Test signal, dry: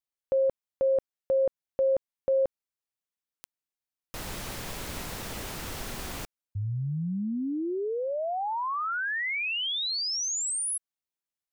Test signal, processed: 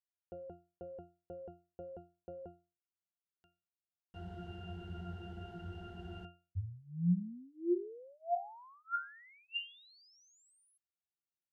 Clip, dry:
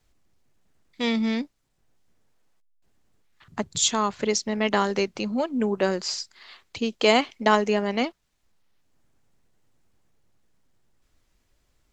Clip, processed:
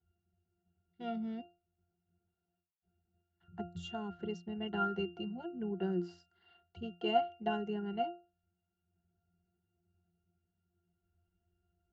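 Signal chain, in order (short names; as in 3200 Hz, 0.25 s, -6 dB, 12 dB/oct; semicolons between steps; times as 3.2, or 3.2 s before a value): octave resonator F, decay 0.31 s; gain +6 dB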